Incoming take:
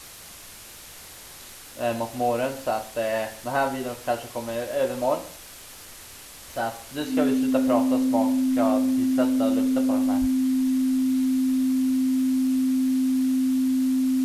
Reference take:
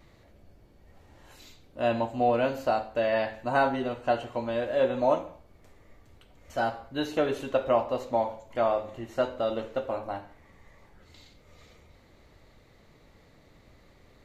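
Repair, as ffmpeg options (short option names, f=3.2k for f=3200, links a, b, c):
-filter_complex "[0:a]adeclick=t=4,bandreject=f=260:w=30,asplit=3[a][b][c];[a]afade=t=out:st=10.2:d=0.02[d];[b]highpass=f=140:w=0.5412,highpass=f=140:w=1.3066,afade=t=in:st=10.2:d=0.02,afade=t=out:st=10.32:d=0.02[e];[c]afade=t=in:st=10.32:d=0.02[f];[d][e][f]amix=inputs=3:normalize=0,afwtdn=0.0079"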